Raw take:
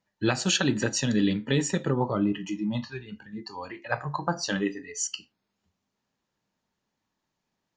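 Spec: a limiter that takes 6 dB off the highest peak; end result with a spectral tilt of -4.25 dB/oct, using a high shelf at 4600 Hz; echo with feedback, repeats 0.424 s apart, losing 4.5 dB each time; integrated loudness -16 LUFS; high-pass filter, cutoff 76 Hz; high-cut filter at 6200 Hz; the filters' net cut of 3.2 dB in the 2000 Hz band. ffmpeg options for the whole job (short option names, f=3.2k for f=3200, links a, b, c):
-af "highpass=76,lowpass=6.2k,equalizer=f=2k:t=o:g=-5.5,highshelf=f=4.6k:g=6,alimiter=limit=-17.5dB:level=0:latency=1,aecho=1:1:424|848|1272|1696|2120|2544|2968|3392|3816:0.596|0.357|0.214|0.129|0.0772|0.0463|0.0278|0.0167|0.01,volume=13dB"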